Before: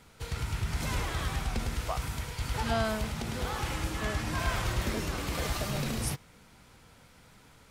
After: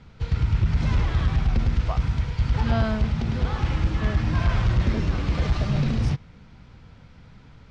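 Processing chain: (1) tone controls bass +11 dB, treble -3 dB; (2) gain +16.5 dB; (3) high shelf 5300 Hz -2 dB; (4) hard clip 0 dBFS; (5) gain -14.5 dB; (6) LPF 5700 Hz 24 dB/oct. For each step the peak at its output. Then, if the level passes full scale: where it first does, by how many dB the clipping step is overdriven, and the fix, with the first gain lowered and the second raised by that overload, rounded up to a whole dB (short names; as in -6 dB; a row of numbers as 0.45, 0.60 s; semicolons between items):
-10.0, +6.5, +6.5, 0.0, -14.5, -14.0 dBFS; step 2, 6.5 dB; step 2 +9.5 dB, step 5 -7.5 dB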